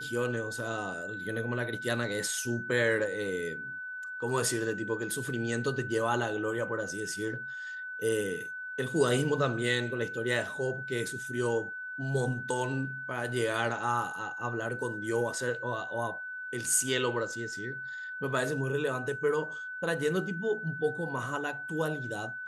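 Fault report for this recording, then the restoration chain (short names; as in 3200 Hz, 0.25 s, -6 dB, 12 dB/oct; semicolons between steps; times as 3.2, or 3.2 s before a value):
tone 1500 Hz -37 dBFS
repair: notch 1500 Hz, Q 30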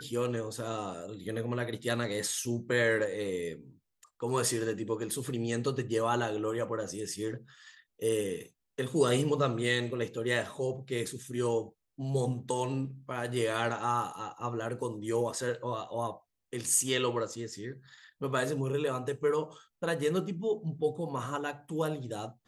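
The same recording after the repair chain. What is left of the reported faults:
none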